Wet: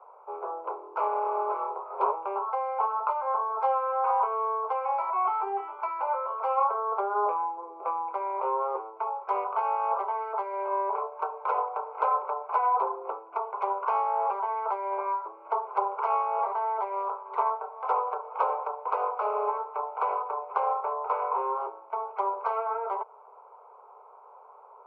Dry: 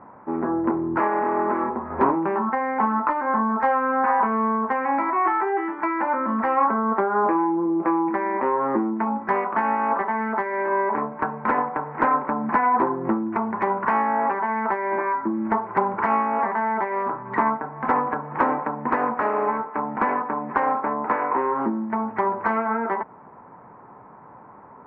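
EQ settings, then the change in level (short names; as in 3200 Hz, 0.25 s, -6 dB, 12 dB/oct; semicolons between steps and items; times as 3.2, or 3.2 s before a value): steep high-pass 410 Hz 96 dB/oct; Butterworth band-stop 1800 Hz, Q 1.7; -4.5 dB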